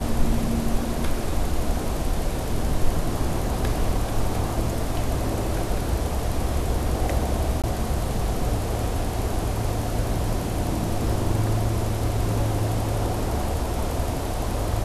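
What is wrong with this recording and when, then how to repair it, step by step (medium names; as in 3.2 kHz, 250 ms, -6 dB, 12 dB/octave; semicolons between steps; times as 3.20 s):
7.62–7.64 s: dropout 17 ms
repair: interpolate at 7.62 s, 17 ms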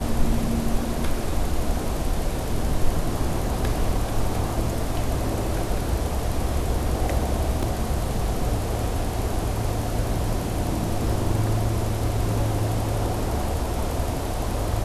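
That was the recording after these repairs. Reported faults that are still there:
nothing left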